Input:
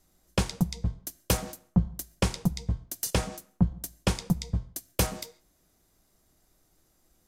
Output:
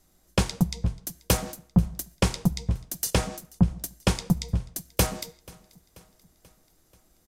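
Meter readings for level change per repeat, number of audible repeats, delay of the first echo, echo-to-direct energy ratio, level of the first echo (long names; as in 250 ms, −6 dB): −4.5 dB, 3, 485 ms, −22.5 dB, −24.0 dB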